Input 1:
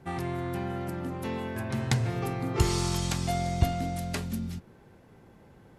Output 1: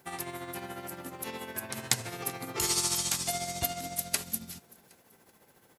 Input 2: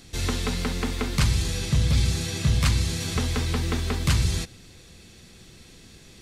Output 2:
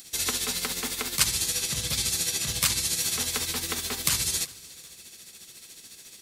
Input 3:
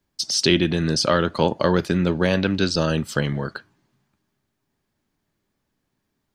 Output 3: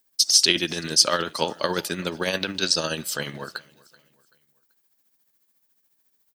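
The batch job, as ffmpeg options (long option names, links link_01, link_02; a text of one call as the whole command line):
ffmpeg -i in.wav -af "aemphasis=mode=production:type=riaa,tremolo=f=14:d=0.55,aecho=1:1:383|766|1149:0.0668|0.0267|0.0107,volume=-1dB" out.wav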